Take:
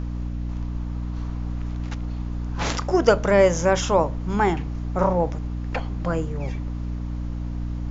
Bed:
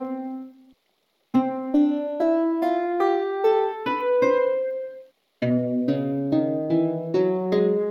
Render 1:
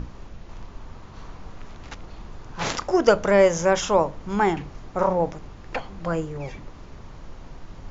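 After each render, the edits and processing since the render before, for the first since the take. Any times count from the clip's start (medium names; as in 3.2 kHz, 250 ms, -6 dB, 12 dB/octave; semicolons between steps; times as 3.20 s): hum notches 60/120/180/240/300 Hz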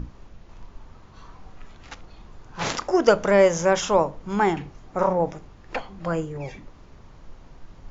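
noise print and reduce 6 dB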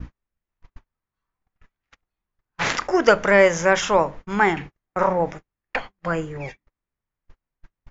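gate -34 dBFS, range -41 dB; peaking EQ 1.9 kHz +9.5 dB 1.2 oct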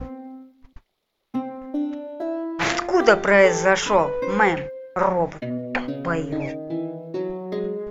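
add bed -6.5 dB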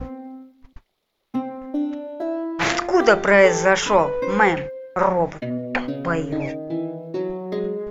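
trim +1.5 dB; peak limiter -2 dBFS, peak gain reduction 2 dB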